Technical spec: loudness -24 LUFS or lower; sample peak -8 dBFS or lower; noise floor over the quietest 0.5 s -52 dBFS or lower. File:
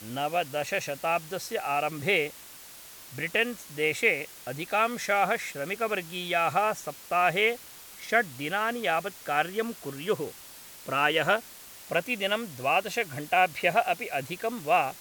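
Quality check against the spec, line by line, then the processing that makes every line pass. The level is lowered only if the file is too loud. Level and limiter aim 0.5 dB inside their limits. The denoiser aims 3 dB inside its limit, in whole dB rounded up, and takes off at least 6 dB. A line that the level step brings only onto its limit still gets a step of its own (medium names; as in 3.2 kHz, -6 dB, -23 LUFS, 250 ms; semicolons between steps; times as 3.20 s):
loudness -28.0 LUFS: pass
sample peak -9.5 dBFS: pass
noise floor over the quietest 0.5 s -47 dBFS: fail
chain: noise reduction 8 dB, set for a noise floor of -47 dBFS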